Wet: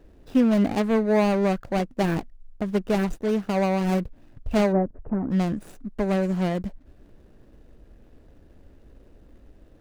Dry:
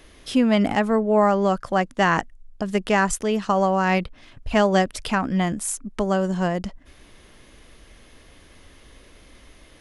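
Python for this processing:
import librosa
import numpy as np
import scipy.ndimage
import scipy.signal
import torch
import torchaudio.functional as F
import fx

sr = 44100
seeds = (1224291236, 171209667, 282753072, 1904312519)

y = scipy.ndimage.median_filter(x, 41, mode='constant')
y = fx.gaussian_blur(y, sr, sigma=6.8, at=(4.71, 5.3), fade=0.02)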